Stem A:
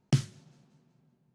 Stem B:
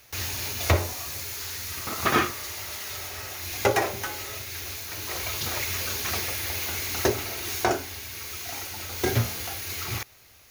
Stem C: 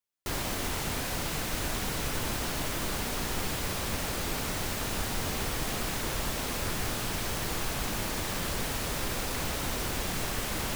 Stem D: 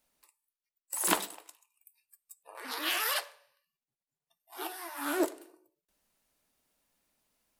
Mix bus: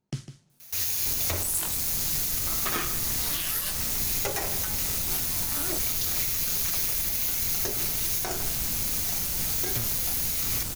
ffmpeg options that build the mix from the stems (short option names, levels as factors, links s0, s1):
-filter_complex "[0:a]volume=0.422,asplit=2[s0][s1];[s1]volume=0.266[s2];[1:a]highshelf=f=4600:g=12,adelay=600,volume=0.596,asplit=2[s3][s4];[s4]volume=0.158[s5];[2:a]bass=f=250:g=9,treble=f=4000:g=10,adelay=800,volume=0.422[s6];[3:a]highshelf=f=4300:g=12,flanger=delay=19:depth=5:speed=2,adelay=500,volume=1.06[s7];[s2][s5]amix=inputs=2:normalize=0,aecho=0:1:153:1[s8];[s0][s3][s6][s7][s8]amix=inputs=5:normalize=0,highshelf=f=4400:g=5,tremolo=f=170:d=0.333,alimiter=limit=0.158:level=0:latency=1:release=207"